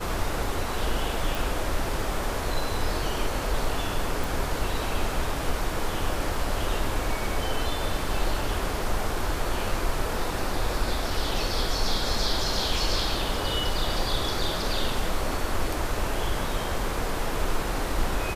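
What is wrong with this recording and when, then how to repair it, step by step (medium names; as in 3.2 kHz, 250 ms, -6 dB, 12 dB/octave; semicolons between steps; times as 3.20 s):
1.35 s: pop
4.24 s: pop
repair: de-click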